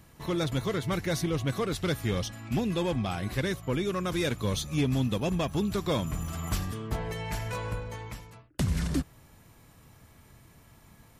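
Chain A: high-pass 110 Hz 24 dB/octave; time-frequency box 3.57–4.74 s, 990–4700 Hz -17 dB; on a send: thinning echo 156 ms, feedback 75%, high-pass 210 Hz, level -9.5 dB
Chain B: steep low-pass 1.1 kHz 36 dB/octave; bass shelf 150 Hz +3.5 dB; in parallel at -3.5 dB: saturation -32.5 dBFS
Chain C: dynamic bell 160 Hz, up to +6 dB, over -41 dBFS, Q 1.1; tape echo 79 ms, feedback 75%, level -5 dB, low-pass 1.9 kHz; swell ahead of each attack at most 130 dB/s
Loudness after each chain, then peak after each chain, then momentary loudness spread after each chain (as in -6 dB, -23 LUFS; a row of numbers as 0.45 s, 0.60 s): -31.0 LUFS, -28.0 LUFS, -26.5 LUFS; -15.5 dBFS, -14.5 dBFS, -12.5 dBFS; 9 LU, 5 LU, 8 LU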